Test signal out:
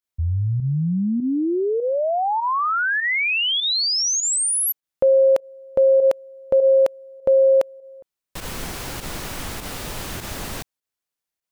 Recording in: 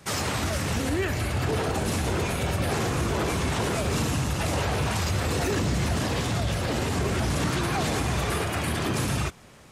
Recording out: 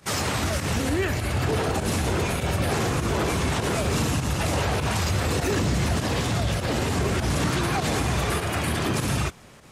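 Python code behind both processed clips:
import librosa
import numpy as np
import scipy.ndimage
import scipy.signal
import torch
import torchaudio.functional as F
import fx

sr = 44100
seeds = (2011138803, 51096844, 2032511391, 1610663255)

y = fx.volume_shaper(x, sr, bpm=100, per_beat=1, depth_db=-10, release_ms=69.0, shape='fast start')
y = y * 10.0 ** (2.0 / 20.0)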